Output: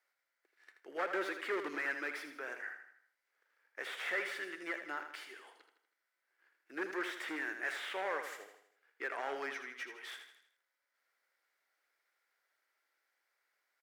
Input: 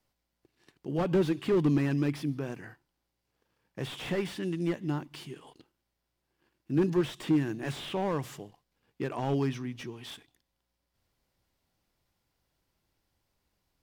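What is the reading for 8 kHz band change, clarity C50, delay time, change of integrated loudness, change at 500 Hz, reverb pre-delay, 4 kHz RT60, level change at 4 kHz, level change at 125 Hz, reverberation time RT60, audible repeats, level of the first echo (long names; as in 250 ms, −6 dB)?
−5.5 dB, no reverb audible, 80 ms, −9.0 dB, −10.0 dB, no reverb audible, no reverb audible, −5.0 dB, below −40 dB, no reverb audible, 5, −8.5 dB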